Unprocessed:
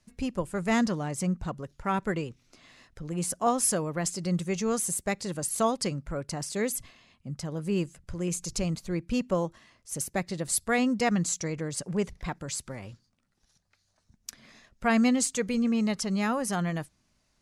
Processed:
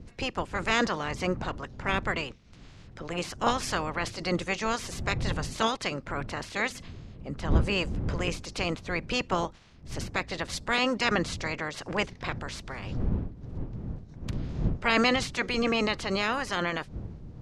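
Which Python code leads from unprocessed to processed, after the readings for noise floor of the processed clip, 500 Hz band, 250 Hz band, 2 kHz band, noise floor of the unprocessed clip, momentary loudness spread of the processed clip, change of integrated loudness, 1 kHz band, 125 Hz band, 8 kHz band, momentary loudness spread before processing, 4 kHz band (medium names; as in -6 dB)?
-50 dBFS, -0.5 dB, -4.5 dB, +6.0 dB, -72 dBFS, 13 LU, -0.5 dB, +2.0 dB, +0.5 dB, -10.0 dB, 12 LU, +7.0 dB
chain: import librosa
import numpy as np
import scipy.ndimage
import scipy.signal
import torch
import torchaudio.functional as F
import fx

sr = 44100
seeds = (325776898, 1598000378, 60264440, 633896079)

y = fx.spec_clip(x, sr, under_db=23)
y = fx.dmg_wind(y, sr, seeds[0], corner_hz=140.0, level_db=-36.0)
y = scipy.signal.sosfilt(scipy.signal.butter(2, 4400.0, 'lowpass', fs=sr, output='sos'), y)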